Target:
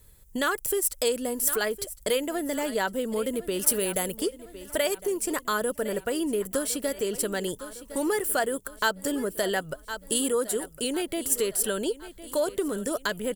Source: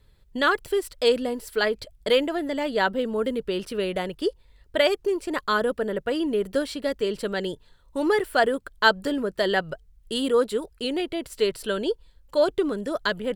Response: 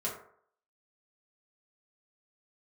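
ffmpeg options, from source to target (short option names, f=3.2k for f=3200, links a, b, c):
-filter_complex "[0:a]asettb=1/sr,asplit=3[a][b][c];[a]atrim=end=3.594[d];[b]atrim=start=3.59:end=4.17,asetpts=PTS-STARTPTS,afade=t=in:d=0.004:c=qsin,afade=t=out:st=0.576:d=0.004:c=qsin,highshelf=f=7.4k:g=11[e];[c]atrim=start=4.166[f];[d][e]acrossfade=d=0.004:c1=hsin:c2=qsin[g];[g][f]acrossfade=d=0.004:c1=qsin:c2=hsin,aecho=1:1:1058|2116|3174|4232:0.126|0.0579|0.0266|0.0123,acompressor=threshold=-30dB:ratio=2,aexciter=amount=7.1:drive=4.7:freq=6k,volume=1.5dB"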